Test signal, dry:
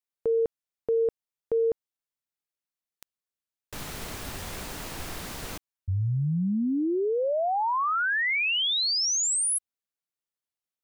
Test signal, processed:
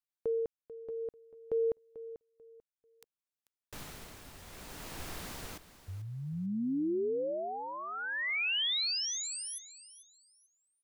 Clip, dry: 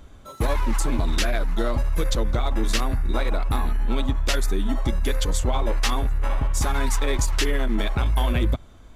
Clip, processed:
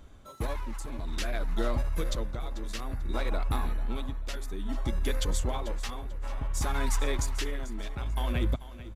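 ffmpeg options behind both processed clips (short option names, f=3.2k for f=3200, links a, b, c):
-filter_complex "[0:a]tremolo=f=0.58:d=0.68,asplit=2[a][b];[b]aecho=0:1:441|882|1323:0.178|0.0462|0.012[c];[a][c]amix=inputs=2:normalize=0,volume=-5.5dB"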